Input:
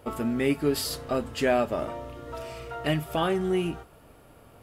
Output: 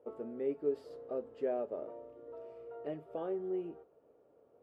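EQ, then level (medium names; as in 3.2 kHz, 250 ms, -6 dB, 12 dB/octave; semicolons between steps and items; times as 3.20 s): band-pass filter 460 Hz, Q 3.2; -5.0 dB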